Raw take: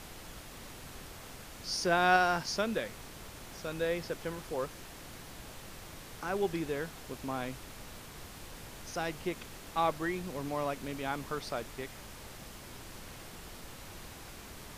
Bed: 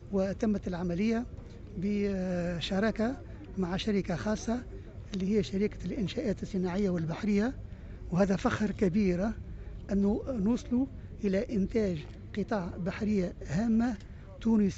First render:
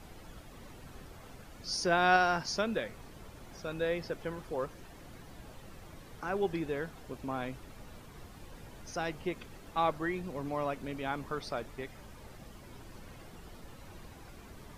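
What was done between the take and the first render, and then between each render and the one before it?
noise reduction 10 dB, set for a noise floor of -49 dBFS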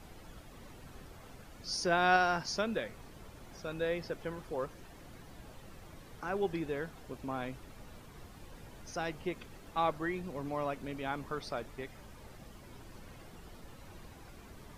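trim -1.5 dB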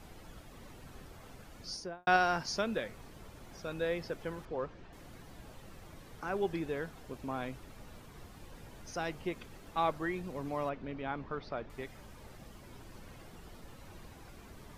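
1.59–2.07 s: studio fade out; 4.45–4.93 s: distance through air 160 m; 10.69–11.70 s: distance through air 230 m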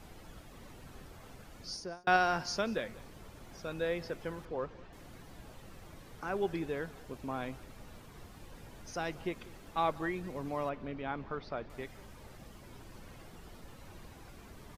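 delay 191 ms -21 dB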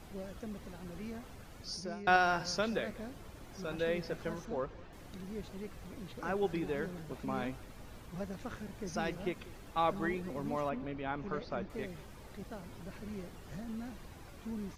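add bed -15 dB

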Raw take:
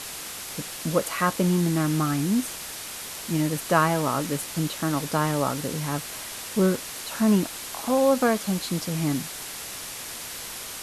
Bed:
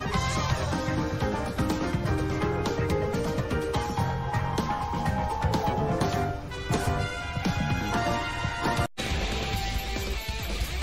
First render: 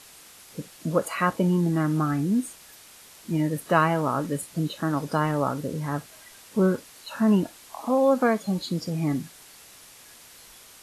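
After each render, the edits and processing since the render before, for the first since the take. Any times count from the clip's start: noise print and reduce 13 dB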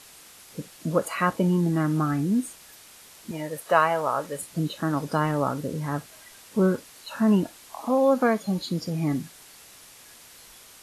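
3.31–4.39 s: resonant low shelf 390 Hz -10 dB, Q 1.5; 7.87–9.12 s: band-stop 7.9 kHz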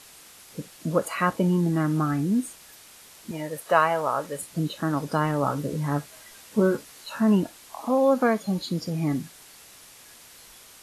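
5.42–7.18 s: doubling 14 ms -5.5 dB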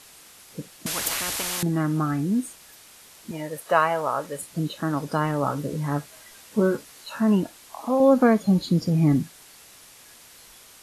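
0.86–1.63 s: spectrum-flattening compressor 10:1; 8.00–9.24 s: bass shelf 350 Hz +9.5 dB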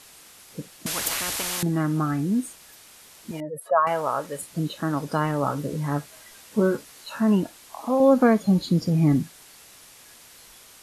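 3.40–3.87 s: spectral contrast enhancement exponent 2.2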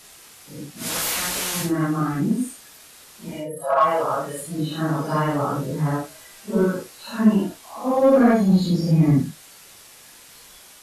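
phase randomisation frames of 200 ms; in parallel at -9 dB: hard clipper -19 dBFS, distortion -8 dB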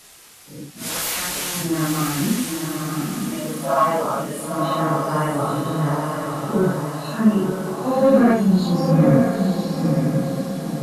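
echo that smears into a reverb 954 ms, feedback 51%, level -3.5 dB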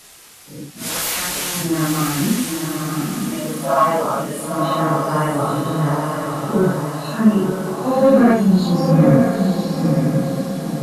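trim +2.5 dB; peak limiter -2 dBFS, peak gain reduction 1.5 dB

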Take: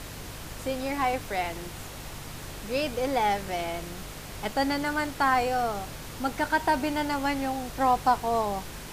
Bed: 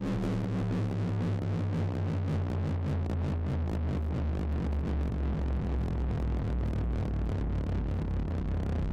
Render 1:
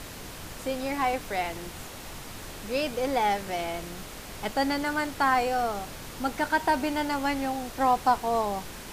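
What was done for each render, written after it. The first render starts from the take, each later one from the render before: de-hum 50 Hz, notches 3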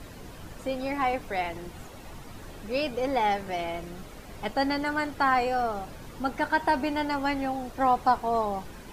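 noise reduction 10 dB, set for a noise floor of -42 dBFS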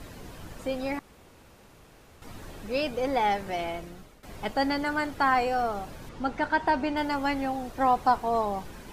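0.99–2.22 s: room tone; 3.68–4.23 s: fade out, to -15 dB; 6.09–6.97 s: distance through air 64 m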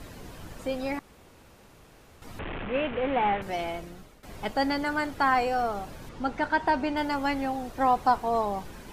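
2.39–3.42 s: one-bit delta coder 16 kbps, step -28.5 dBFS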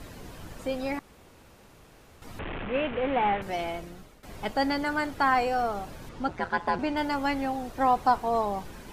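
6.28–6.79 s: ring modulator 88 Hz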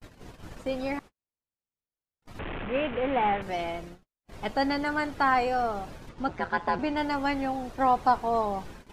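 treble shelf 11 kHz -12 dB; gate -42 dBFS, range -49 dB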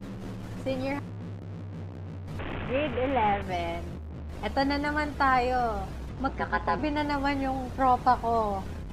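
add bed -8 dB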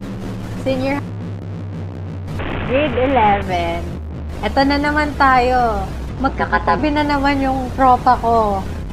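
trim +12 dB; peak limiter -1 dBFS, peak gain reduction 2.5 dB

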